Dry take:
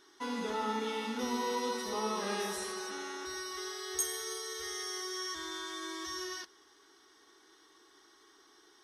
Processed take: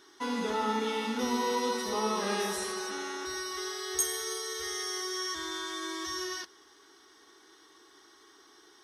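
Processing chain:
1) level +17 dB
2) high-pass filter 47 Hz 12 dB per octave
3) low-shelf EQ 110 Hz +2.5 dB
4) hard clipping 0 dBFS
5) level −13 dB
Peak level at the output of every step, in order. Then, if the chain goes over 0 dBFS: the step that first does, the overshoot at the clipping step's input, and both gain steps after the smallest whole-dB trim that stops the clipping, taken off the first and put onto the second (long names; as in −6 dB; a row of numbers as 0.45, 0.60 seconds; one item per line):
−2.5, −2.5, −2.5, −2.5, −15.5 dBFS
no step passes full scale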